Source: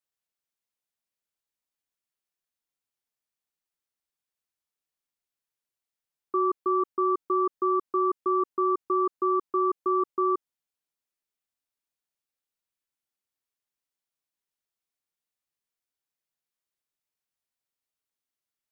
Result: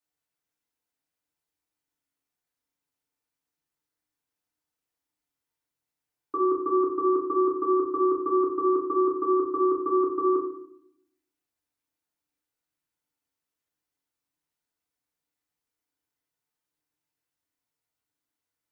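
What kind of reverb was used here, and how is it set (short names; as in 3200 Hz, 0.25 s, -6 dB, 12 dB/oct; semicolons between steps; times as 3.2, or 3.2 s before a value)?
FDN reverb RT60 0.67 s, low-frequency decay 1.55×, high-frequency decay 0.35×, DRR -4 dB; gain -1.5 dB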